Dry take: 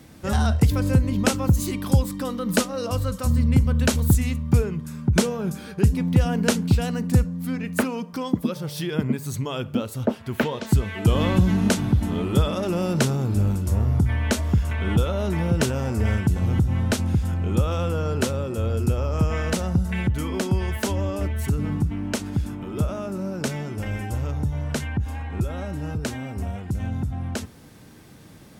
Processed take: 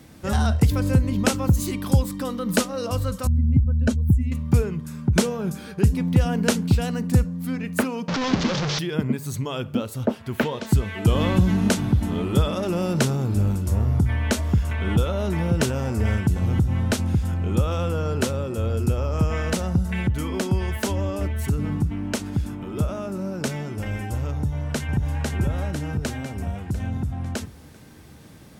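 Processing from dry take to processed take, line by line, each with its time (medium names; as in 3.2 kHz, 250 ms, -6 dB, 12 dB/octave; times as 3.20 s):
3.27–4.32 s: spectral contrast enhancement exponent 1.7
8.08–8.79 s: one-bit delta coder 32 kbps, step -18 dBFS
24.38–25.20 s: echo throw 500 ms, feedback 55%, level -2 dB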